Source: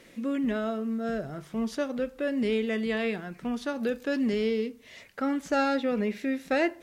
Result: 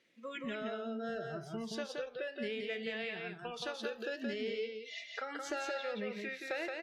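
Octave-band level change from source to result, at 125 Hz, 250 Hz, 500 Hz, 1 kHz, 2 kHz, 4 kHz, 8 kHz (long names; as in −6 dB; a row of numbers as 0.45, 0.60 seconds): −10.0, −15.5, −9.5, −10.0, −6.0, −3.0, −3.5 decibels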